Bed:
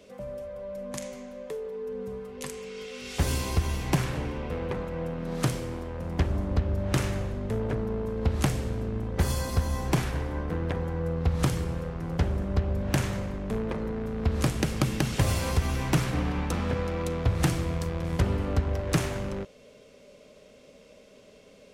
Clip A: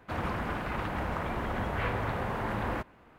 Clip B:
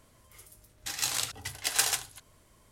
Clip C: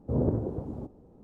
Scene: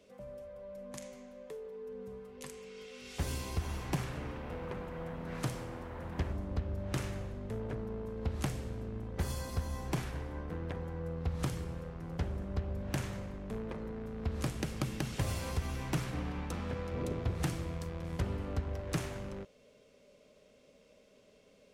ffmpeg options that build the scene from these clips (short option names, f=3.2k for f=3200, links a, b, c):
-filter_complex "[0:a]volume=-9.5dB[a];[1:a]atrim=end=3.18,asetpts=PTS-STARTPTS,volume=-16dB,afade=t=in:d=0.004:c=hsin,afade=t=out:st=3.176:d=0.004:c=hsin,adelay=3510[b];[3:a]atrim=end=1.23,asetpts=PTS-STARTPTS,volume=-13dB,afade=t=in:d=0.004:c=hsin,afade=t=out:st=1.226:d=0.004:c=hsin,adelay=16830[c];[a][b][c]amix=inputs=3:normalize=0"